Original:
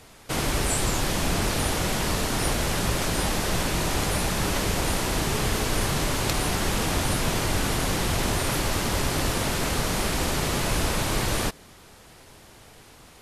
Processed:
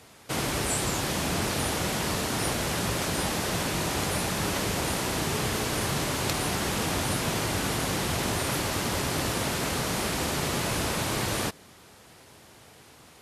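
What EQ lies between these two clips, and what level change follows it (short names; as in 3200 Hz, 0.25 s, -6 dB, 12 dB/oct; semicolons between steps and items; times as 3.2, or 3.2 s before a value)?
HPF 82 Hz 12 dB/oct; -2.0 dB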